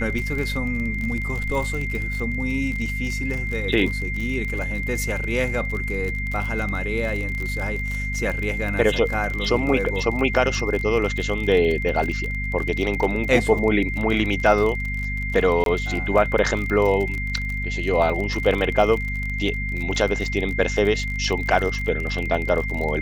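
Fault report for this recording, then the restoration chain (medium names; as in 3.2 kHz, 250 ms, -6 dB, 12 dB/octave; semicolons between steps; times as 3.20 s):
crackle 36 per s -26 dBFS
hum 50 Hz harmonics 5 -28 dBFS
whine 2.1 kHz -28 dBFS
15.64–15.66 s: dropout 22 ms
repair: de-click; de-hum 50 Hz, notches 5; band-stop 2.1 kHz, Q 30; interpolate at 15.64 s, 22 ms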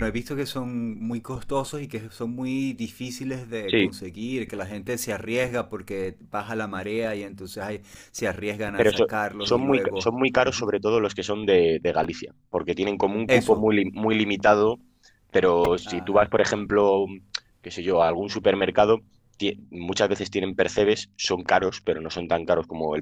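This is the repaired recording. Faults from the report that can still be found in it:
nothing left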